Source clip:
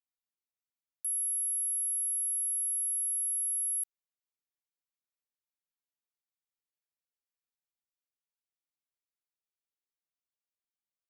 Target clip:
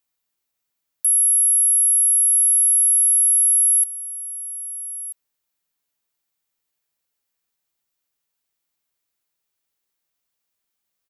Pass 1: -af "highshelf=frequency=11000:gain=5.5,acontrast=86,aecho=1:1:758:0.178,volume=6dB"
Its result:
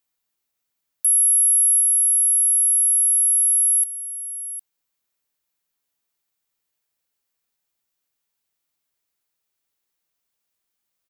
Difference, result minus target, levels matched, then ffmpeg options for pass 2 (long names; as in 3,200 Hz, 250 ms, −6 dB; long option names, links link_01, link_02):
echo 529 ms early
-af "highshelf=frequency=11000:gain=5.5,acontrast=86,aecho=1:1:1287:0.178,volume=6dB"